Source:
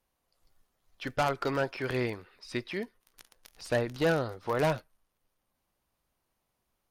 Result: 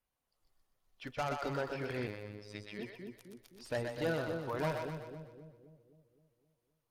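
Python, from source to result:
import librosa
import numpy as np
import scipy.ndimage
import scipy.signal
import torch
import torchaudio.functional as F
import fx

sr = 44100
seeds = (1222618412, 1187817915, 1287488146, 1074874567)

y = fx.spec_quant(x, sr, step_db=15)
y = fx.echo_split(y, sr, split_hz=480.0, low_ms=260, high_ms=124, feedback_pct=52, wet_db=-4.5)
y = fx.robotise(y, sr, hz=104.0, at=(2.07, 2.79))
y = y * librosa.db_to_amplitude(-8.0)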